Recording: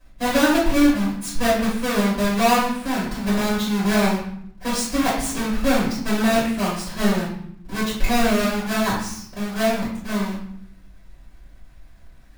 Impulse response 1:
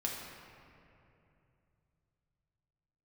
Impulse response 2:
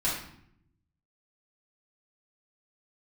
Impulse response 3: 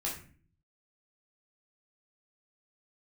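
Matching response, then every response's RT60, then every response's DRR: 2; 2.8, 0.70, 0.40 s; -2.5, -9.0, -4.5 dB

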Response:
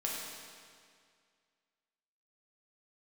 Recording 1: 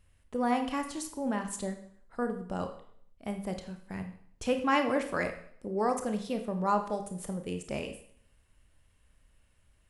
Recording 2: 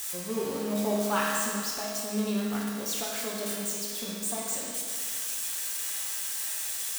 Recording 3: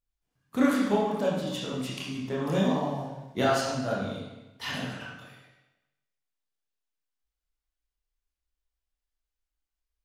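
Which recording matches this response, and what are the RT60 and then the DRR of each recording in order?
2; 0.60, 2.1, 1.0 s; 6.0, -4.5, -5.5 dB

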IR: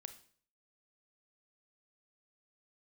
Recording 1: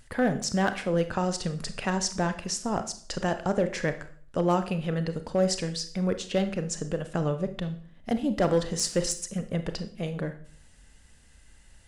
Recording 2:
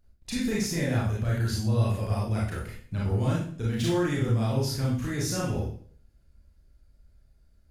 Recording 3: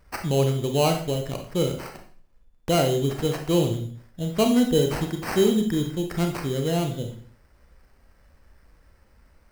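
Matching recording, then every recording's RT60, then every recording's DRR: 1; 0.50, 0.50, 0.50 s; 9.0, -6.0, 3.5 dB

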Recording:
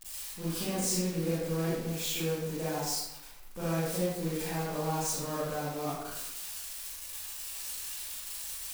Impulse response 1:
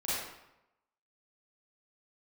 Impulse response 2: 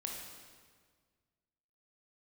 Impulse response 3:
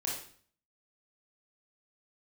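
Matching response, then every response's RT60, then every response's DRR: 1; 0.90, 1.7, 0.50 s; -11.0, -0.5, -4.0 dB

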